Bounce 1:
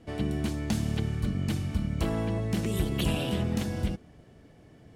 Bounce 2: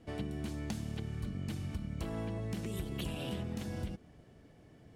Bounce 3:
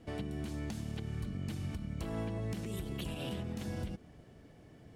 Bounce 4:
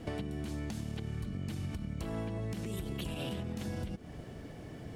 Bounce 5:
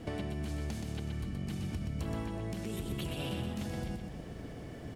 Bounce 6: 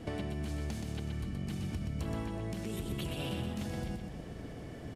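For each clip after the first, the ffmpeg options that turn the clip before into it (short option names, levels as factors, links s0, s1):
-af "acompressor=threshold=0.0316:ratio=6,volume=0.596"
-af "alimiter=level_in=2.37:limit=0.0631:level=0:latency=1:release=147,volume=0.422,volume=1.26"
-af "acompressor=threshold=0.00501:ratio=5,volume=3.35"
-af "aecho=1:1:124|248|372|496|620|744:0.562|0.276|0.135|0.0662|0.0324|0.0159"
-af "aresample=32000,aresample=44100"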